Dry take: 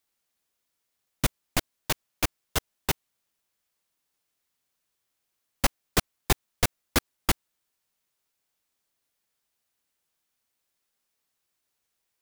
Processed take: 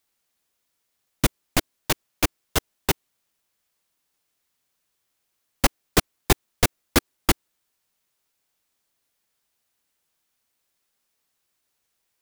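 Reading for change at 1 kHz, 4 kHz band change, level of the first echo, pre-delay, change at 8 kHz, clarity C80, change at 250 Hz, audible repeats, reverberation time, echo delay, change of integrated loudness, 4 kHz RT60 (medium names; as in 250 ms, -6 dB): +4.5 dB, +4.0 dB, no echo, no reverb, +4.0 dB, no reverb, +6.5 dB, no echo, no reverb, no echo, +4.5 dB, no reverb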